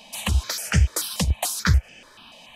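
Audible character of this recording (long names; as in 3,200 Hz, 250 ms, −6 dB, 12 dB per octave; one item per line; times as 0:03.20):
notches that jump at a steady rate 6.9 Hz 380–3,900 Hz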